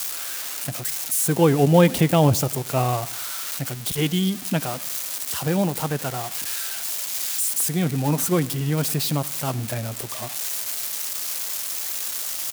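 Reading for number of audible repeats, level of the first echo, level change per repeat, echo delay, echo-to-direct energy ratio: 3, -21.5 dB, -6.5 dB, 96 ms, -20.5 dB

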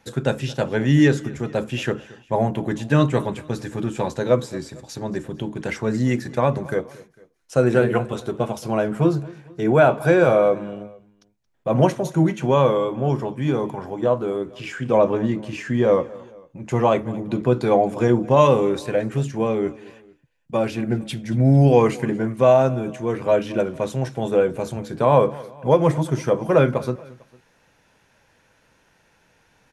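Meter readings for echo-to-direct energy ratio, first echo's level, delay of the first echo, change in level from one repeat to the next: -20.0 dB, -21.0 dB, 225 ms, -6.5 dB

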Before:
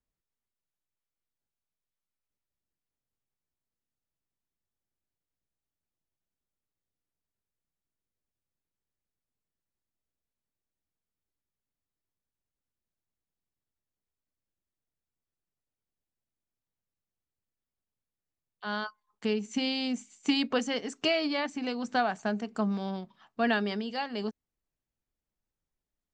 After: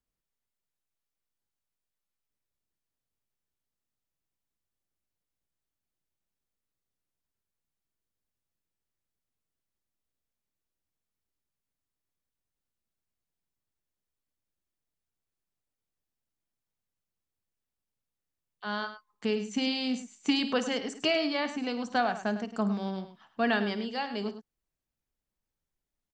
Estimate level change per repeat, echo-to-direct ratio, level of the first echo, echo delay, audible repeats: no regular repeats, -10.0 dB, -14.5 dB, 54 ms, 2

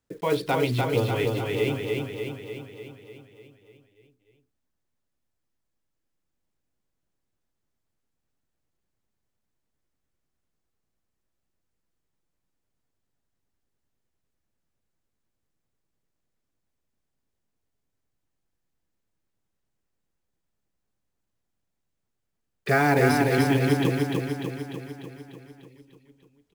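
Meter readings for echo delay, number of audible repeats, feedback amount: 297 ms, 8, 60%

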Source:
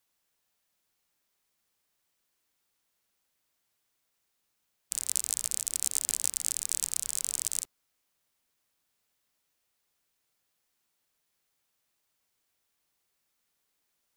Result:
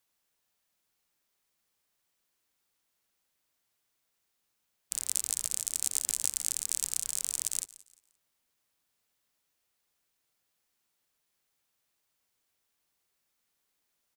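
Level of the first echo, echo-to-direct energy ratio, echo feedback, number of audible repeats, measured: -20.0 dB, -19.5 dB, 32%, 2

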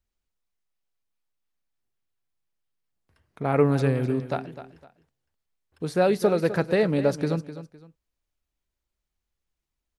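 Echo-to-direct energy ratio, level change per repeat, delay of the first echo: -12.5 dB, -11.0 dB, 255 ms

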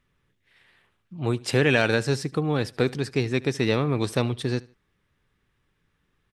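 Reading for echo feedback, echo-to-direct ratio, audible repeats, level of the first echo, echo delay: 29%, -22.0 dB, 2, -22.5 dB, 75 ms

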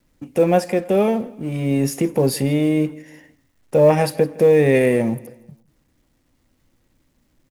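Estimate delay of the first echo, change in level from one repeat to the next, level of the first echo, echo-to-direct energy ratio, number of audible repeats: 162 ms, -7.5 dB, -22.0 dB, -21.0 dB, 2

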